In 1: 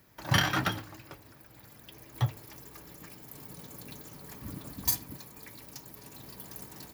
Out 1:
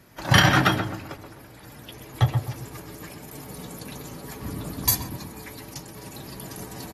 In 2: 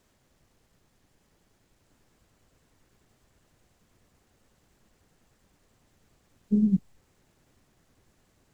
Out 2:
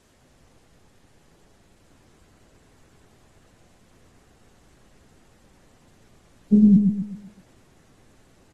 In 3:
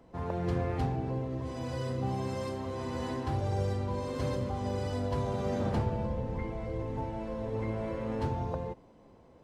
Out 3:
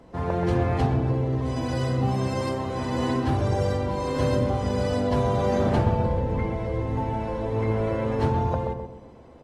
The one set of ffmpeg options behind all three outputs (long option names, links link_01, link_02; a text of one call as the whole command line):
ffmpeg -i in.wav -filter_complex "[0:a]asplit=2[link_01][link_02];[link_02]adelay=129,lowpass=frequency=1100:poles=1,volume=-4.5dB,asplit=2[link_03][link_04];[link_04]adelay=129,lowpass=frequency=1100:poles=1,volume=0.4,asplit=2[link_05][link_06];[link_06]adelay=129,lowpass=frequency=1100:poles=1,volume=0.4,asplit=2[link_07][link_08];[link_08]adelay=129,lowpass=frequency=1100:poles=1,volume=0.4,asplit=2[link_09][link_10];[link_10]adelay=129,lowpass=frequency=1100:poles=1,volume=0.4[link_11];[link_01][link_03][link_05][link_07][link_09][link_11]amix=inputs=6:normalize=0,aresample=32000,aresample=44100,volume=7.5dB" -ar 44100 -c:a aac -b:a 32k out.aac